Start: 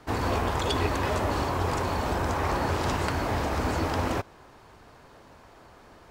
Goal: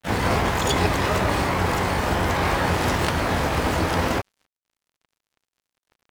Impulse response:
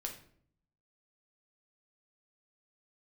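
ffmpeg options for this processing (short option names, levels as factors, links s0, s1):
-filter_complex "[0:a]aeval=exprs='sgn(val(0))*max(abs(val(0))-0.00708,0)':c=same,asplit=2[s0][s1];[s1]asetrate=88200,aresample=44100,atempo=0.5,volume=0.631[s2];[s0][s2]amix=inputs=2:normalize=0,volume=1.78"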